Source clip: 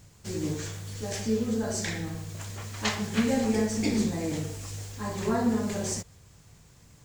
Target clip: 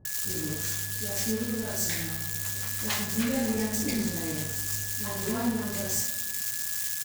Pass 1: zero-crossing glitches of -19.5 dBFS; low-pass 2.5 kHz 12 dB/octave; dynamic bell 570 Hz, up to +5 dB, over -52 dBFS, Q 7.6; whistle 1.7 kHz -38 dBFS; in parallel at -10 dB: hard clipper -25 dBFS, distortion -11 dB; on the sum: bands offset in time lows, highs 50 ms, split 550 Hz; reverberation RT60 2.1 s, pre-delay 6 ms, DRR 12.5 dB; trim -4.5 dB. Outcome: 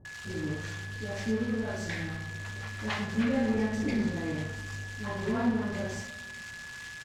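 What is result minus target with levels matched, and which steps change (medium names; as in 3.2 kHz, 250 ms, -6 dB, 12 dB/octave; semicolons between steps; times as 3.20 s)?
2 kHz band +4.5 dB; hard clipper: distortion -7 dB
change: hard clipper -31.5 dBFS, distortion -4 dB; remove: low-pass 2.5 kHz 12 dB/octave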